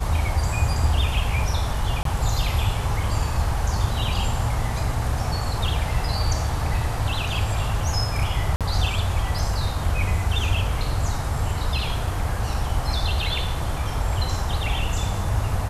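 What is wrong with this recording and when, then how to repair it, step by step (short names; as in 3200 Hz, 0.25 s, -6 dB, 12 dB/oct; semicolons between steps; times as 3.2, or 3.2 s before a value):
2.03–2.05 gap 23 ms
8.56–8.61 gap 47 ms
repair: interpolate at 2.03, 23 ms; interpolate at 8.56, 47 ms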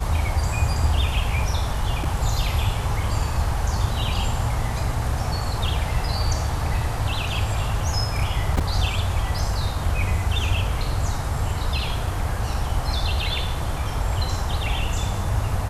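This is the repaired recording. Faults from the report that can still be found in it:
none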